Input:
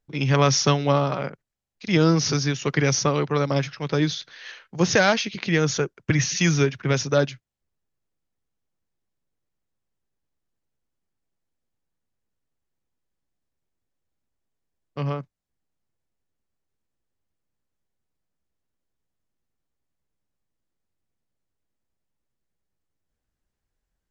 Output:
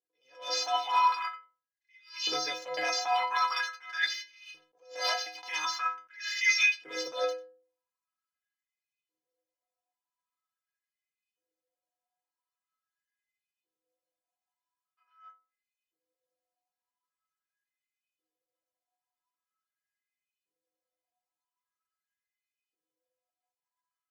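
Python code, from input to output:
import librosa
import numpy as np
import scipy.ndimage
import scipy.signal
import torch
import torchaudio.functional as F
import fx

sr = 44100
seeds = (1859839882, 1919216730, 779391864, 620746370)

y = fx.spec_clip(x, sr, under_db=23)
y = fx.dynamic_eq(y, sr, hz=4700.0, q=2.2, threshold_db=-38.0, ratio=4.0, max_db=6)
y = fx.hpss(y, sr, part='percussive', gain_db=6)
y = fx.peak_eq(y, sr, hz=240.0, db=12.0, octaves=0.29)
y = fx.leveller(y, sr, passes=1)
y = fx.filter_lfo_highpass(y, sr, shape='saw_up', hz=0.44, low_hz=390.0, high_hz=2800.0, q=7.9)
y = fx.stiff_resonator(y, sr, f0_hz=150.0, decay_s=0.66, stiffness=0.03)
y = y + 10.0 ** (-21.5 / 20.0) * np.pad(y, (int(95 * sr / 1000.0), 0))[:len(y)]
y = fx.attack_slew(y, sr, db_per_s=140.0)
y = y * librosa.db_to_amplitude(-6.0)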